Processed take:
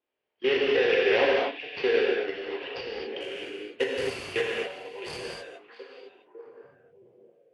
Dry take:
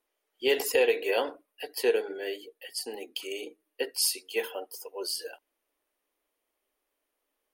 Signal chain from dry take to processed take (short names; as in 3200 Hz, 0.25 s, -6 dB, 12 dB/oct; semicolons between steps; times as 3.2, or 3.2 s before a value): median filter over 25 samples; HPF 59 Hz; band shelf 2300 Hz +10 dB 1.3 oct; level quantiser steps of 16 dB; steep low-pass 5600 Hz 72 dB/oct, from 3.2 s 11000 Hz; delay with a stepping band-pass 0.663 s, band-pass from 2900 Hz, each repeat -1.4 oct, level -10 dB; non-linear reverb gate 0.28 s flat, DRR -3 dB; gain +7.5 dB